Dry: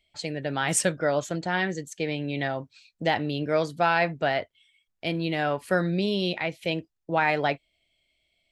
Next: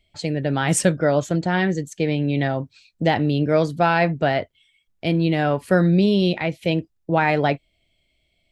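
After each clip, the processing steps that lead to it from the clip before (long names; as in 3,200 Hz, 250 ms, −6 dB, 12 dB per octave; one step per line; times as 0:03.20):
low-shelf EQ 420 Hz +10 dB
level +2 dB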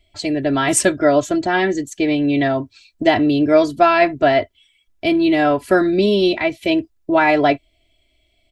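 comb filter 3 ms, depth 90%
level +2.5 dB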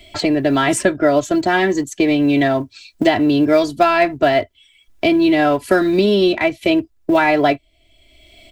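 in parallel at −9.5 dB: dead-zone distortion −27.5 dBFS
on the sum: floating-point word with a short mantissa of 6 bits
multiband upward and downward compressor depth 70%
level −1.5 dB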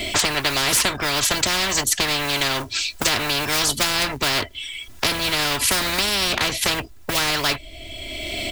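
every bin compressed towards the loudest bin 10 to 1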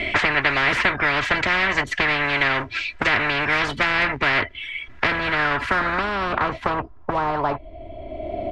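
low-pass filter sweep 2,000 Hz → 730 Hz, 0:04.84–0:08.18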